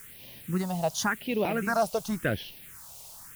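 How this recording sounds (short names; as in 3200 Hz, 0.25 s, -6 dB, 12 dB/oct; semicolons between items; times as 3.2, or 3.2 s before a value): a quantiser's noise floor 8-bit, dither triangular; phasing stages 4, 0.91 Hz, lowest notch 280–1400 Hz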